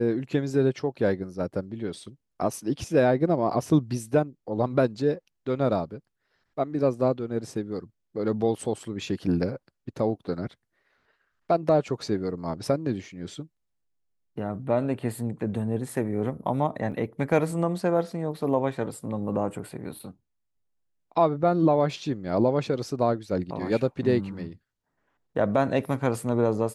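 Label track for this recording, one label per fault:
16.920000	16.920000	dropout 3.7 ms
19.990000	19.990000	dropout 4.9 ms

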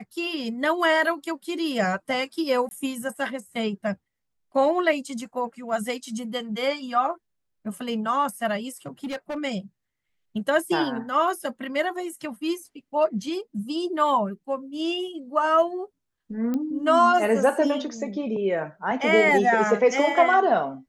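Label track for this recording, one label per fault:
2.690000	2.710000	dropout 21 ms
8.860000	9.380000	clipped -27 dBFS
16.540000	16.540000	pop -17 dBFS

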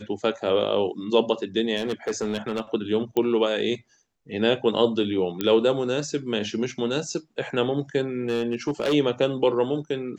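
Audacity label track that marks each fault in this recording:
1.760000	2.610000	clipped -21 dBFS
3.170000	3.170000	pop -13 dBFS
5.410000	5.410000	pop -11 dBFS
8.290000	8.940000	clipped -19.5 dBFS

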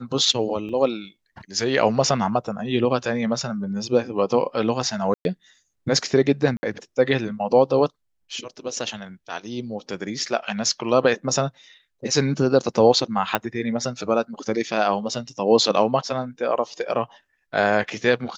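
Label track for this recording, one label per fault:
0.690000	0.690000	dropout 4.5 ms
5.140000	5.250000	dropout 111 ms
6.570000	6.630000	dropout 60 ms
13.350000	13.350000	pop -6 dBFS

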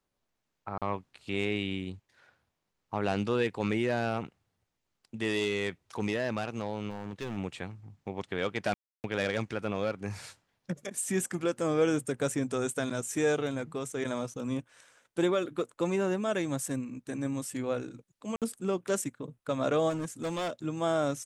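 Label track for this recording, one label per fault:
0.780000	0.820000	dropout 37 ms
6.890000	7.380000	clipped -32 dBFS
8.740000	9.040000	dropout 299 ms
18.360000	18.420000	dropout 57 ms
19.890000	20.510000	clipped -29.5 dBFS

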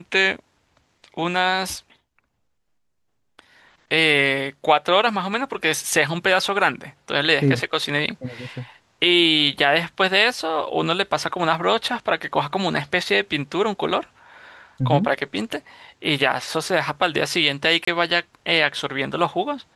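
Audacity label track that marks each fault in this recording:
17.850000	17.870000	dropout 24 ms

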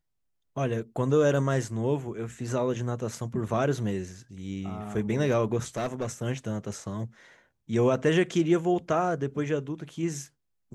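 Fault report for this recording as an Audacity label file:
5.760000	6.060000	clipped -25 dBFS

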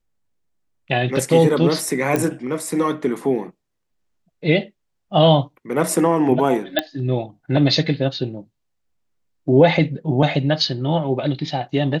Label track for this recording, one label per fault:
2.160000	2.160000	pop -7 dBFS
6.790000	6.790000	pop -5 dBFS

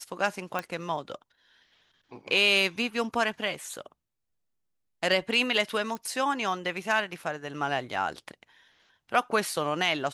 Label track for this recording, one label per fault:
0.590000	0.590000	pop -16 dBFS
5.950000	5.950000	pop -22 dBFS

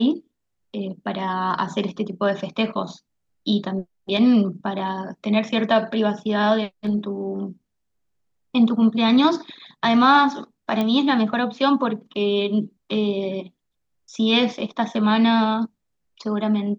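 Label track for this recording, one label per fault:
10.810000	10.810000	pop -12 dBFS

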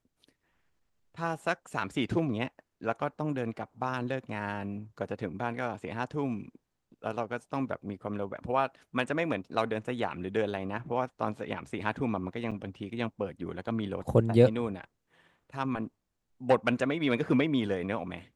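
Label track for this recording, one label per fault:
12.510000	12.520000	dropout 6.5 ms

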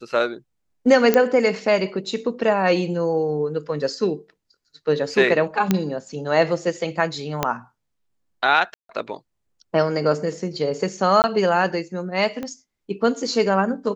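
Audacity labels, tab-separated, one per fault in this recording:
1.140000	1.140000	pop -4 dBFS
5.710000	5.710000	pop -4 dBFS
7.430000	7.430000	pop -5 dBFS
8.740000	8.890000	dropout 153 ms
11.220000	11.240000	dropout 19 ms
12.430000	12.430000	pop -17 dBFS

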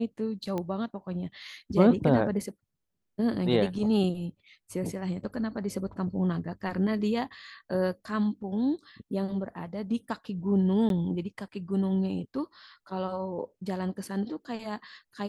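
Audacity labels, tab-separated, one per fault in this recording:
0.580000	0.580000	pop -20 dBFS
10.890000	10.900000	dropout 12 ms

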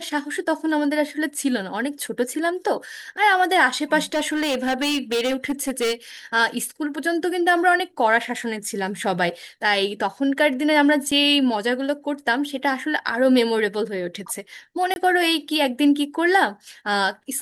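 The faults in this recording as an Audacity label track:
4.120000	5.930000	clipped -18.5 dBFS
11.110000	11.120000	dropout 5.4 ms
14.940000	14.960000	dropout 21 ms

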